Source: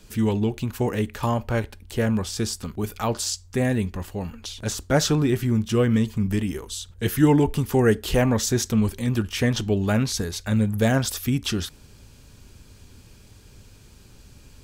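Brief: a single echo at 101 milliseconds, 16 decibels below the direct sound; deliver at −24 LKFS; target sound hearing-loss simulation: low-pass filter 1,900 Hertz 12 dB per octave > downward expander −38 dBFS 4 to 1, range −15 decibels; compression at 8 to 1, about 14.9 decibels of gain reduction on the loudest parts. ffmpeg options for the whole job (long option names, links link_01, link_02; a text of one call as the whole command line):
ffmpeg -i in.wav -af "acompressor=threshold=-28dB:ratio=8,lowpass=1900,aecho=1:1:101:0.158,agate=range=-15dB:threshold=-38dB:ratio=4,volume=10dB" out.wav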